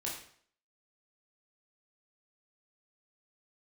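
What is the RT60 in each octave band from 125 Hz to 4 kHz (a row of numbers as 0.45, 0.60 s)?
0.55, 0.55, 0.60, 0.55, 0.55, 0.50 s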